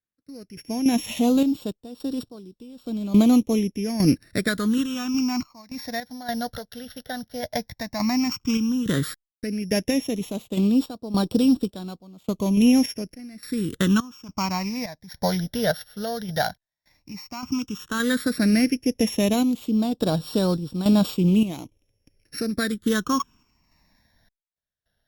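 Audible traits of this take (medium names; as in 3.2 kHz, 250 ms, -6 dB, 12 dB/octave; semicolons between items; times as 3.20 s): a buzz of ramps at a fixed pitch in blocks of 8 samples; random-step tremolo, depth 100%; phasing stages 8, 0.11 Hz, lowest notch 320–2000 Hz; Opus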